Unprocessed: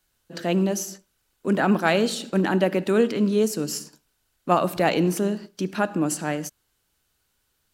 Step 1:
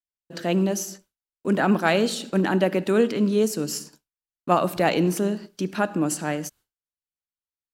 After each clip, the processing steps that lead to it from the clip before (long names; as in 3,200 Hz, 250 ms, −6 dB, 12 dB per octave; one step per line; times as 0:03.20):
downward expander −46 dBFS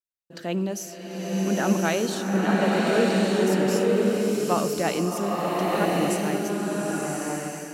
slow-attack reverb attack 1,170 ms, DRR −3.5 dB
level −5 dB